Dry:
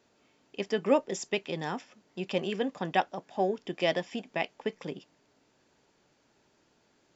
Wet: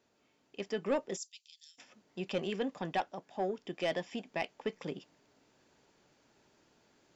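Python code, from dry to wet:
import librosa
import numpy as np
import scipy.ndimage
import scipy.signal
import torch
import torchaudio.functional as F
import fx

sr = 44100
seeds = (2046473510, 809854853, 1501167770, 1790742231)

y = fx.rider(x, sr, range_db=10, speed_s=2.0)
y = fx.cheby2_highpass(y, sr, hz=990.0, order=4, stop_db=70, at=(1.16, 1.78), fade=0.02)
y = 10.0 ** (-18.0 / 20.0) * np.tanh(y / 10.0 ** (-18.0 / 20.0))
y = F.gain(torch.from_numpy(y), -5.0).numpy()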